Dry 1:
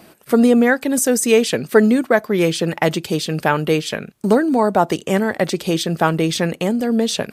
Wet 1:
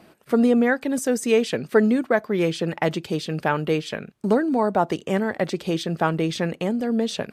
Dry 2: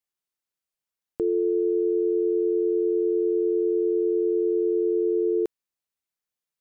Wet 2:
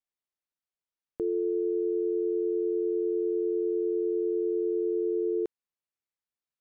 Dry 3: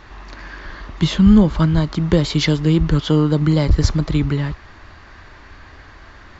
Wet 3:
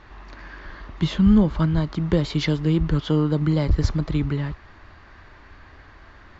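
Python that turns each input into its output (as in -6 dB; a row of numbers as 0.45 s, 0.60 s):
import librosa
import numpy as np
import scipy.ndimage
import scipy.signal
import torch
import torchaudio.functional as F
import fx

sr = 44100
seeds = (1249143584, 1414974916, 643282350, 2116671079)

y = fx.high_shelf(x, sr, hz=6300.0, db=-11.5)
y = y * 10.0 ** (-5.0 / 20.0)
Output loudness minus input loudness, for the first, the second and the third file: -5.5 LU, -5.0 LU, -5.0 LU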